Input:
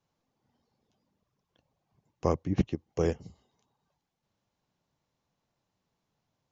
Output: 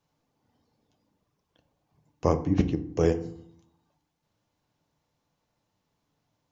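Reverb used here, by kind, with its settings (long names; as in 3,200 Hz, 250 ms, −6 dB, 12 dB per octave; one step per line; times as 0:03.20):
feedback delay network reverb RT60 0.64 s, low-frequency decay 1.5×, high-frequency decay 0.55×, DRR 8 dB
level +3 dB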